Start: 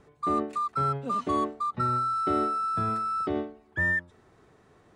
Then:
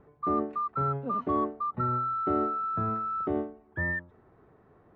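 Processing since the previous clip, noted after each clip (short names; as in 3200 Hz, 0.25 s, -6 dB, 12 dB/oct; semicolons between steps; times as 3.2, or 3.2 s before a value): LPF 1400 Hz 12 dB/oct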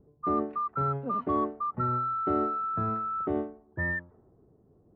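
low-pass opened by the level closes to 380 Hz, open at -23.5 dBFS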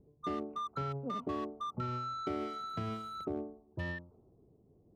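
Wiener smoothing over 25 samples; compressor, threshold -30 dBFS, peak gain reduction 6.5 dB; gain -3 dB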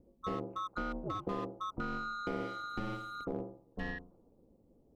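ring modulator 100 Hz; gain +2.5 dB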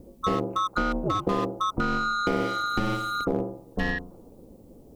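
high shelf 5300 Hz +9 dB; in parallel at +2 dB: compressor, threshold -45 dBFS, peak gain reduction 12.5 dB; on the sum: gain +9 dB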